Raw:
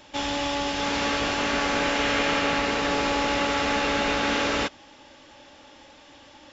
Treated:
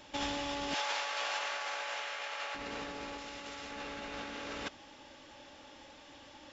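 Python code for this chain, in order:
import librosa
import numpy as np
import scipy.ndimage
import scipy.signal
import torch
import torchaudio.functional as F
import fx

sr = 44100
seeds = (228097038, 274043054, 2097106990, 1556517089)

y = fx.highpass(x, sr, hz=600.0, slope=24, at=(0.74, 2.55))
y = fx.high_shelf(y, sr, hz=3400.0, db=8.5, at=(3.18, 3.71))
y = fx.over_compress(y, sr, threshold_db=-29.0, ratio=-0.5)
y = y * librosa.db_to_amplitude(-9.0)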